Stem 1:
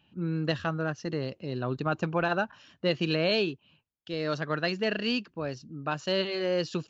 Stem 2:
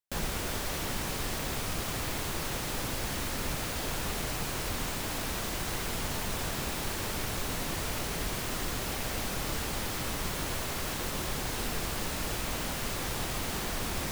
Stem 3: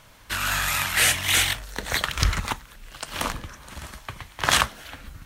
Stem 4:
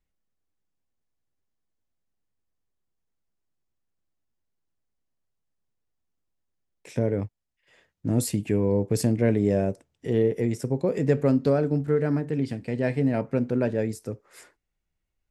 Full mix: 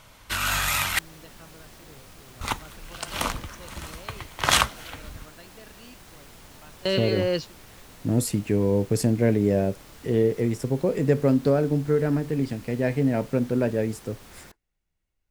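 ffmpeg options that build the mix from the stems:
-filter_complex "[0:a]adelay=750,volume=1.41[s0];[1:a]adelay=400,volume=0.188[s1];[2:a]bandreject=f=1700:w=12,volume=1.06,asplit=3[s2][s3][s4];[s2]atrim=end=0.99,asetpts=PTS-STARTPTS,afade=t=out:st=0.986:d=0.004:c=hsin[s5];[s3]atrim=start=0.99:end=2.41,asetpts=PTS-STARTPTS,volume=0[s6];[s4]atrim=start=2.41,asetpts=PTS-STARTPTS,afade=t=in:d=0.004:c=hsin[s7];[s5][s6][s7]concat=n=3:v=0:a=1[s8];[3:a]volume=1.12,asplit=2[s9][s10];[s10]apad=whole_len=337018[s11];[s0][s11]sidechaingate=range=0.0631:threshold=0.00224:ratio=16:detection=peak[s12];[s12][s1][s8][s9]amix=inputs=4:normalize=0"

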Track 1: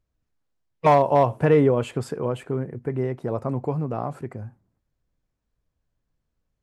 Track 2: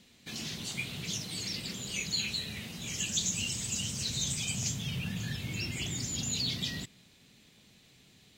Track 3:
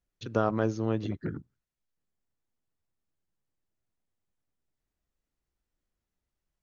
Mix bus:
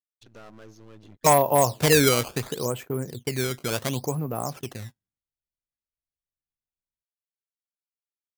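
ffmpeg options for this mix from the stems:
-filter_complex "[0:a]acrusher=samples=14:mix=1:aa=0.000001:lfo=1:lforange=22.4:lforate=0.71,agate=range=0.0708:threshold=0.0141:ratio=16:detection=peak,adelay=400,volume=0.75[s0];[2:a]aeval=exprs='if(lt(val(0),0),0.251*val(0),val(0))':c=same,agate=range=0.0224:threshold=0.00112:ratio=3:detection=peak,asoftclip=type=tanh:threshold=0.0447,volume=0.251[s1];[s0][s1]amix=inputs=2:normalize=0,highshelf=f=2500:g=9"

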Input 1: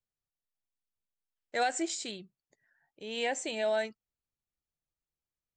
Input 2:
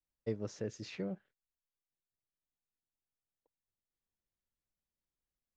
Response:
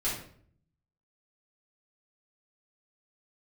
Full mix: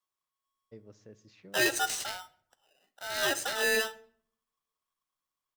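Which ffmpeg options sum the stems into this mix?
-filter_complex "[0:a]aeval=exprs='val(0)*sgn(sin(2*PI*1100*n/s))':c=same,volume=1.26,asplit=2[s0][s1];[s1]volume=0.106[s2];[1:a]adelay=450,volume=0.211,asplit=2[s3][s4];[s4]volume=0.0841[s5];[2:a]atrim=start_sample=2205[s6];[s2][s5]amix=inputs=2:normalize=0[s7];[s7][s6]afir=irnorm=-1:irlink=0[s8];[s0][s3][s8]amix=inputs=3:normalize=0"

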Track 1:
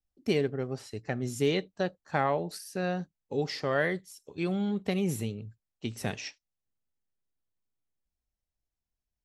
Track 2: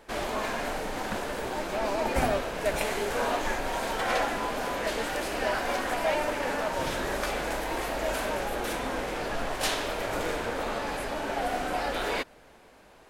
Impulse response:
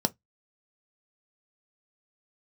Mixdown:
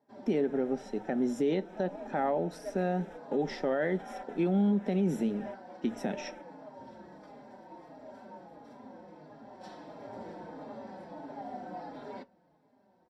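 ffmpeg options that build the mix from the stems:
-filter_complex "[0:a]highpass=200,volume=0.891,asplit=3[s0][s1][s2];[s1]volume=0.355[s3];[1:a]asplit=2[s4][s5];[s5]adelay=4.4,afreqshift=-1.5[s6];[s4][s6]amix=inputs=2:normalize=1,volume=0.266,afade=t=in:st=9.38:d=0.78:silence=0.473151,asplit=2[s7][s8];[s8]volume=0.355[s9];[s2]apad=whole_len=577519[s10];[s7][s10]sidechaingate=range=0.0224:threshold=0.00178:ratio=16:detection=peak[s11];[2:a]atrim=start_sample=2205[s12];[s3][s9]amix=inputs=2:normalize=0[s13];[s13][s12]afir=irnorm=-1:irlink=0[s14];[s0][s11][s14]amix=inputs=3:normalize=0,lowpass=f=1600:p=1,alimiter=limit=0.0944:level=0:latency=1:release=113"

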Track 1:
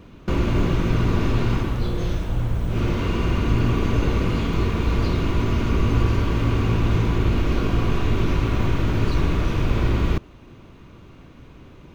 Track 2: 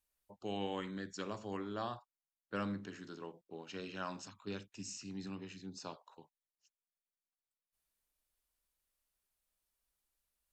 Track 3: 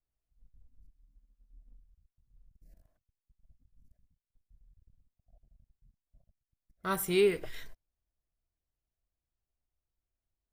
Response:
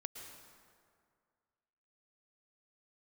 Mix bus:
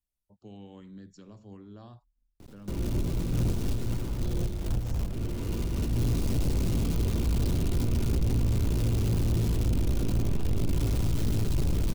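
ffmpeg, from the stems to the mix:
-filter_complex "[0:a]highshelf=f=2200:g=-6.5,bandreject=f=1100:w=9.3,acrusher=bits=6:dc=4:mix=0:aa=0.000001,adelay=2400,volume=0.75,asplit=2[s0][s1];[s1]volume=0.376[s2];[1:a]bass=f=250:g=12,treble=f=4000:g=-1,alimiter=level_in=1.88:limit=0.0631:level=0:latency=1:release=335,volume=0.531,volume=0.422,asplit=2[s3][s4];[2:a]adelay=500,volume=0.126[s5];[s4]apad=whole_len=632429[s6];[s0][s6]sidechaincompress=threshold=0.00126:ratio=8:attack=24:release=101[s7];[3:a]atrim=start_sample=2205[s8];[s2][s8]afir=irnorm=-1:irlink=0[s9];[s7][s3][s5][s9]amix=inputs=4:normalize=0,acrossover=split=240|3000[s10][s11][s12];[s11]acompressor=threshold=0.0141:ratio=2[s13];[s10][s13][s12]amix=inputs=3:normalize=0,equalizer=f=1600:t=o:w=1.9:g=-7,asoftclip=type=tanh:threshold=0.0891"

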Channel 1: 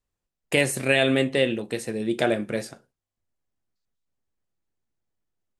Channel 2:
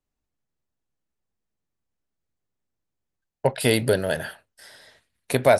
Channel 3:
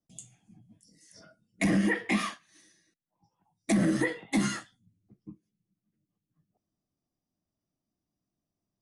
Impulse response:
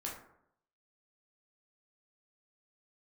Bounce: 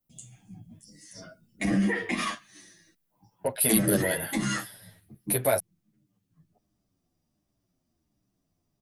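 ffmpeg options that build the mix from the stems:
-filter_complex "[1:a]alimiter=limit=0.355:level=0:latency=1:release=21,aexciter=amount=11.2:drive=3.7:freq=9800,volume=0.708[s0];[2:a]lowshelf=f=110:g=6,volume=1.12,dynaudnorm=f=200:g=3:m=3.16,alimiter=limit=0.15:level=0:latency=1:release=77,volume=1[s1];[s0][s1]amix=inputs=2:normalize=0,asplit=2[s2][s3];[s3]adelay=9.1,afreqshift=-1.4[s4];[s2][s4]amix=inputs=2:normalize=1"

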